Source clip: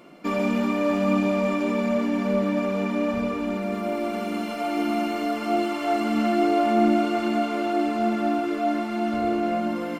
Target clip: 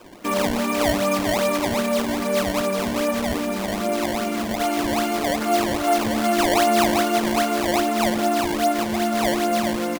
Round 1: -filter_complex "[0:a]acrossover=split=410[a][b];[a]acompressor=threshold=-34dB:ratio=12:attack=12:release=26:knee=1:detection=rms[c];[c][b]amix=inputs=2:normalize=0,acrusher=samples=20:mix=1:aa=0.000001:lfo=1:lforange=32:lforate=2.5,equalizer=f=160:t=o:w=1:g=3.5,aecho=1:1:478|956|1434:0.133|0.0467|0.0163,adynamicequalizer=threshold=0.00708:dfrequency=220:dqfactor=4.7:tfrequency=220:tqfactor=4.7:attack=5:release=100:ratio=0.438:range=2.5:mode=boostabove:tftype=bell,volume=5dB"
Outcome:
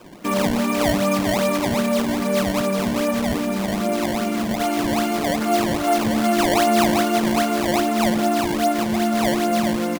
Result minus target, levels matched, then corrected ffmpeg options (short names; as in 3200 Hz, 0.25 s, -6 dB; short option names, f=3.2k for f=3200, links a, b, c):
125 Hz band +3.5 dB
-filter_complex "[0:a]acrossover=split=410[a][b];[a]acompressor=threshold=-34dB:ratio=12:attack=12:release=26:knee=1:detection=rms[c];[c][b]amix=inputs=2:normalize=0,acrusher=samples=20:mix=1:aa=0.000001:lfo=1:lforange=32:lforate=2.5,equalizer=f=160:t=o:w=1:g=-4,aecho=1:1:478|956|1434:0.133|0.0467|0.0163,adynamicequalizer=threshold=0.00708:dfrequency=220:dqfactor=4.7:tfrequency=220:tqfactor=4.7:attack=5:release=100:ratio=0.438:range=2.5:mode=boostabove:tftype=bell,volume=5dB"